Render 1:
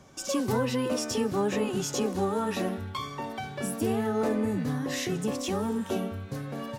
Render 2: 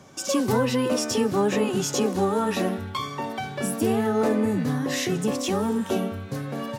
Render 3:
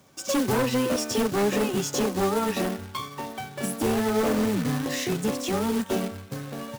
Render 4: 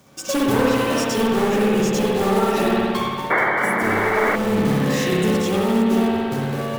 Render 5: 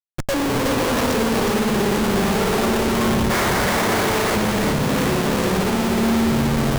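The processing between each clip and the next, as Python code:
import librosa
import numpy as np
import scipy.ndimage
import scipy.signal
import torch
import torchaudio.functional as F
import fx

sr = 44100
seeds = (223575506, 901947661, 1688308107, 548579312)

y1 = scipy.signal.sosfilt(scipy.signal.butter(2, 96.0, 'highpass', fs=sr, output='sos'), x)
y1 = y1 * librosa.db_to_amplitude(5.0)
y2 = 10.0 ** (-17.5 / 20.0) * (np.abs((y1 / 10.0 ** (-17.5 / 20.0) + 3.0) % 4.0 - 2.0) - 1.0)
y2 = fx.quant_companded(y2, sr, bits=4)
y2 = fx.upward_expand(y2, sr, threshold_db=-38.0, expansion=1.5)
y3 = fx.rev_spring(y2, sr, rt60_s=2.1, pass_ms=(57,), chirp_ms=45, drr_db=-5.0)
y3 = fx.spec_paint(y3, sr, seeds[0], shape='noise', start_s=3.3, length_s=1.06, low_hz=290.0, high_hz=2300.0, level_db=-18.0)
y3 = fx.rider(y3, sr, range_db=4, speed_s=0.5)
y4 = fx.schmitt(y3, sr, flips_db=-23.5)
y4 = y4 + 10.0 ** (-4.0 / 20.0) * np.pad(y4, (int(369 * sr / 1000.0), 0))[:len(y4)]
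y4 = y4 * librosa.db_to_amplitude(-1.0)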